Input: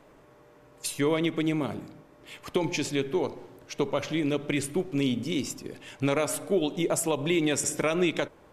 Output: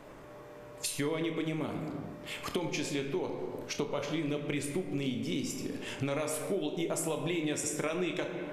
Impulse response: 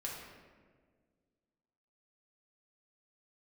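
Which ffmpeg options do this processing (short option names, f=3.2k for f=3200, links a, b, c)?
-filter_complex "[0:a]asplit=2[a][b];[1:a]atrim=start_sample=2205,afade=t=out:st=0.43:d=0.01,atrim=end_sample=19404,adelay=27[c];[b][c]afir=irnorm=-1:irlink=0,volume=-4.5dB[d];[a][d]amix=inputs=2:normalize=0,acompressor=threshold=-39dB:ratio=3,volume=4.5dB"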